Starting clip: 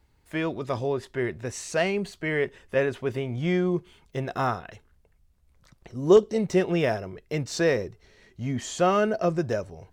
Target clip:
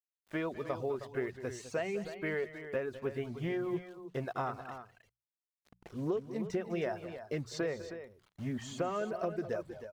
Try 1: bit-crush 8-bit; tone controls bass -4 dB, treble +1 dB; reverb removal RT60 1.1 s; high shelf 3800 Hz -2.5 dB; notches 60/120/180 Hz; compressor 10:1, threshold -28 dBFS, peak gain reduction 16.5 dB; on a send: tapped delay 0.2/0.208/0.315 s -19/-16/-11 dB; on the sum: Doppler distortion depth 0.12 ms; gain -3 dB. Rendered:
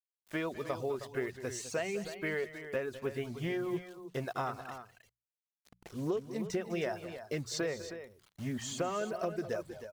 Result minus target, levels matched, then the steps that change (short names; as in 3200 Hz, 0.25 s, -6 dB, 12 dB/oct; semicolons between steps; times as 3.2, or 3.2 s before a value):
8000 Hz band +8.0 dB
change: high shelf 3800 Hz -13.5 dB